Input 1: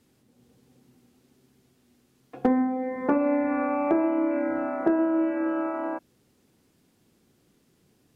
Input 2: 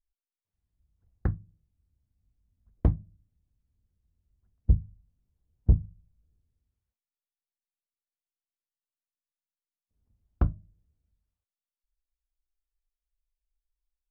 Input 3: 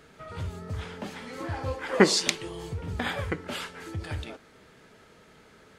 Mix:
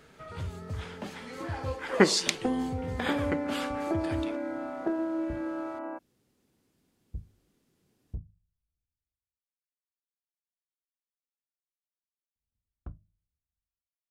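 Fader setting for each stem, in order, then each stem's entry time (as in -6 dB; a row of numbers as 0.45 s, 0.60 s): -7.5 dB, -18.0 dB, -2.0 dB; 0.00 s, 2.45 s, 0.00 s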